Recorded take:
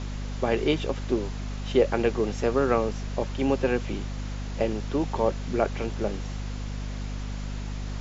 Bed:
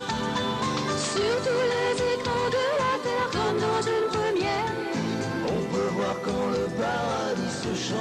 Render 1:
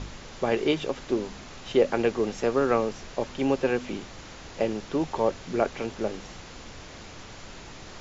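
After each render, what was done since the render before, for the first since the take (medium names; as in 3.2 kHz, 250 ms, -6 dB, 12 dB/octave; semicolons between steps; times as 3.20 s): de-hum 50 Hz, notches 5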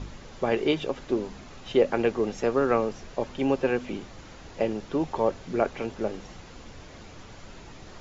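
noise reduction 6 dB, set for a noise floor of -44 dBFS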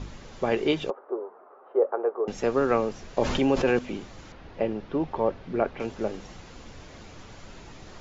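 0.90–2.28 s: Chebyshev band-pass 400–1300 Hz, order 3; 3.17–3.79 s: level flattener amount 70%; 4.32–5.80 s: distance through air 220 m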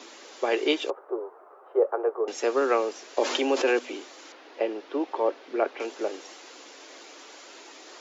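steep high-pass 290 Hz 48 dB/octave; treble shelf 2.9 kHz +7.5 dB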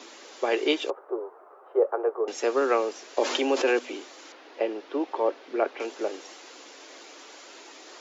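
no audible change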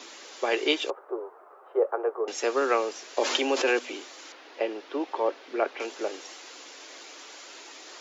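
tilt shelf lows -3 dB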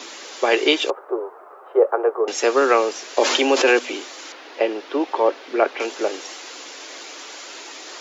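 trim +8.5 dB; peak limiter -3 dBFS, peak gain reduction 3 dB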